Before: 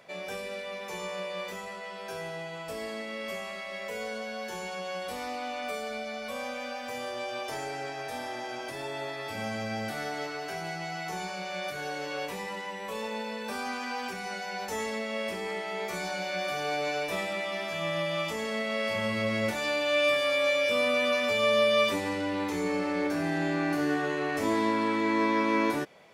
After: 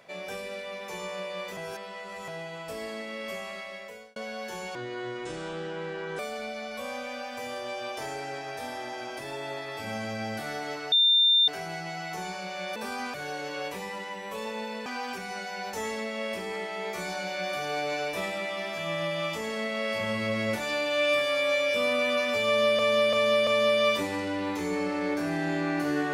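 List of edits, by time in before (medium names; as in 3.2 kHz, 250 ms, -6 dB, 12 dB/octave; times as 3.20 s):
1.57–2.28 s: reverse
3.59–4.16 s: fade out
4.75–5.70 s: speed 66%
10.43 s: add tone 3.6 kHz -17.5 dBFS 0.56 s
13.43–13.81 s: move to 11.71 s
21.40–21.74 s: loop, 4 plays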